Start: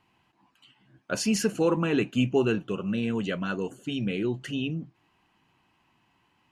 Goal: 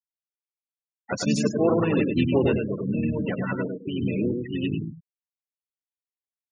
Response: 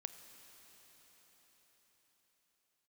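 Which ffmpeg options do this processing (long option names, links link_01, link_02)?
-filter_complex "[0:a]asplit=4[link_01][link_02][link_03][link_04];[link_02]asetrate=29433,aresample=44100,atempo=1.49831,volume=-8dB[link_05];[link_03]asetrate=33038,aresample=44100,atempo=1.33484,volume=-10dB[link_06];[link_04]asetrate=58866,aresample=44100,atempo=0.749154,volume=-7dB[link_07];[link_01][link_05][link_06][link_07]amix=inputs=4:normalize=0,asplit=2[link_08][link_09];[link_09]aecho=0:1:102|204|306|408:0.631|0.177|0.0495|0.0139[link_10];[link_08][link_10]amix=inputs=2:normalize=0,afftfilt=real='re*gte(hypot(re,im),0.0562)':imag='im*gte(hypot(re,im),0.0562)':win_size=1024:overlap=0.75,bandreject=frequency=1600:width=22"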